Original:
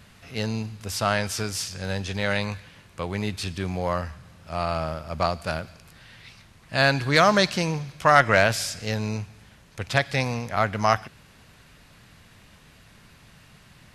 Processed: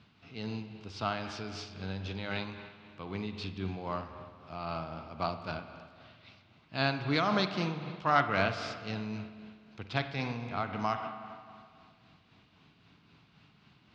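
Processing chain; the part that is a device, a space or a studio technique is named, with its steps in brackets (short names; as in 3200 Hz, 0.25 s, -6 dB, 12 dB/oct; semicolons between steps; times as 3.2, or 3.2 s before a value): combo amplifier with spring reverb and tremolo (spring tank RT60 2.1 s, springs 42/52 ms, chirp 25 ms, DRR 6.5 dB; tremolo 3.8 Hz, depth 39%; speaker cabinet 100–4500 Hz, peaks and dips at 290 Hz +5 dB, 550 Hz -8 dB, 1800 Hz -9 dB); gain -7 dB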